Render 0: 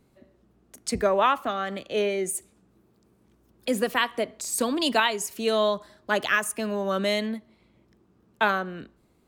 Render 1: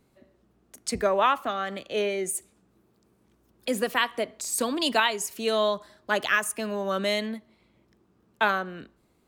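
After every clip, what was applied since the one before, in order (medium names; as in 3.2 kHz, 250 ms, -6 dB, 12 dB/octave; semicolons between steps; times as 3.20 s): bass shelf 450 Hz -3.5 dB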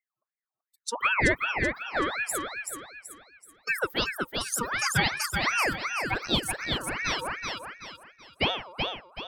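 expander on every frequency bin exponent 2; thinning echo 380 ms, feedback 39%, high-pass 230 Hz, level -4 dB; ring modulator with a swept carrier 1.4 kHz, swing 50%, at 2.7 Hz; trim +4 dB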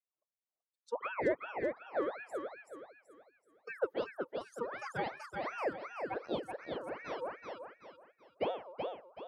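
band-pass filter 520 Hz, Q 2.2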